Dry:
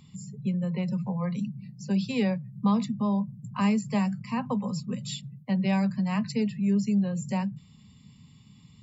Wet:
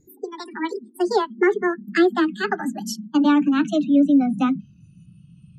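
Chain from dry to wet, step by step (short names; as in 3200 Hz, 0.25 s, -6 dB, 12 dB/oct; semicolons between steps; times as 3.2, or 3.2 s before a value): speed glide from 196% -> 120%; spectral noise reduction 20 dB; treble ducked by the level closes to 2600 Hz, closed at -24 dBFS; mismatched tape noise reduction decoder only; gain +9 dB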